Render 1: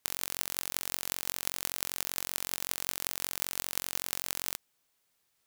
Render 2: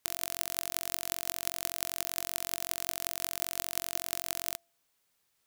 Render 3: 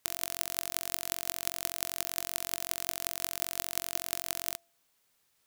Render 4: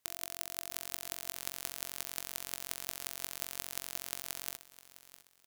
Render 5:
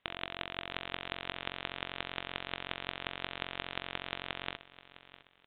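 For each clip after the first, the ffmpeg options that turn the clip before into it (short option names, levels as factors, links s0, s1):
-af "bandreject=f=340.3:t=h:w=4,bandreject=f=680.6:t=h:w=4"
-af "acrusher=bits=2:mode=log:mix=0:aa=0.000001,volume=1.33"
-af "aecho=1:1:657|1314|1971:0.15|0.0479|0.0153,volume=0.501"
-af "aresample=8000,aresample=44100,volume=2.66"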